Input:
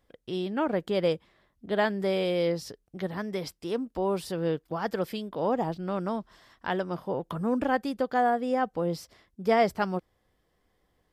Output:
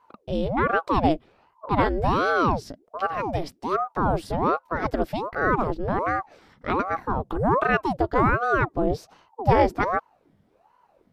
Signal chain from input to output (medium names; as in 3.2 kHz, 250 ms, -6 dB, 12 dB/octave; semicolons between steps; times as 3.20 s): tilt EQ -2 dB/octave; ring modulator with a swept carrier 570 Hz, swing 75%, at 1.3 Hz; trim +5.5 dB